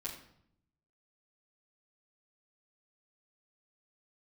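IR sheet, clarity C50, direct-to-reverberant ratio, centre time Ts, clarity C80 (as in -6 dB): 7.0 dB, -9.0 dB, 28 ms, 10.0 dB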